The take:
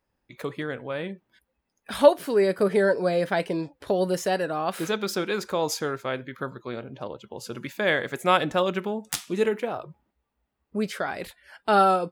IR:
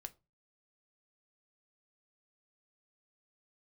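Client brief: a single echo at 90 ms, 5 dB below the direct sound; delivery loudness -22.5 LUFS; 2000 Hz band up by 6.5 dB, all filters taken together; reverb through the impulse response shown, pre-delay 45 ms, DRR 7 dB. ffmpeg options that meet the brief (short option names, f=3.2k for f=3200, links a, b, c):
-filter_complex "[0:a]equalizer=f=2k:t=o:g=8.5,aecho=1:1:90:0.562,asplit=2[a][b];[1:a]atrim=start_sample=2205,adelay=45[c];[b][c]afir=irnorm=-1:irlink=0,volume=-2dB[d];[a][d]amix=inputs=2:normalize=0,volume=-0.5dB"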